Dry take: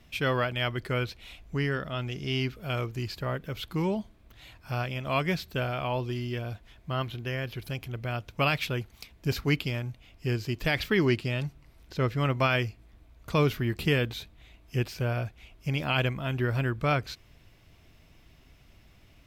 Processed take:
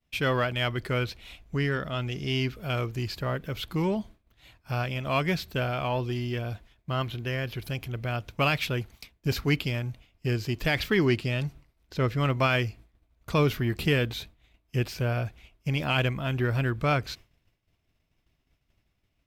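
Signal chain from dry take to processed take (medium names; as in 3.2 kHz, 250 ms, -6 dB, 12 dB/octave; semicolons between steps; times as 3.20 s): expander -43 dBFS; in parallel at -8 dB: saturation -31.5 dBFS, distortion -6 dB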